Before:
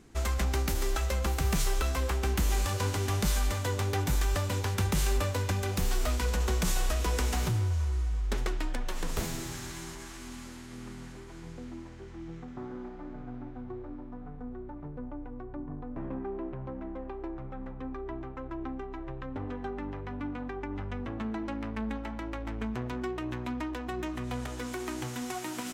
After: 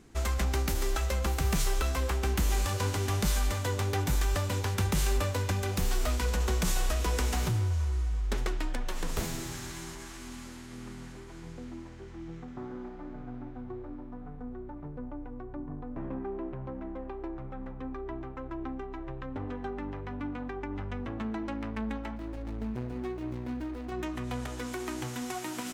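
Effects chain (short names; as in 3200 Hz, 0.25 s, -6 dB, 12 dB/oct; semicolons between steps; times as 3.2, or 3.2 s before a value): 22.16–23.92 median filter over 41 samples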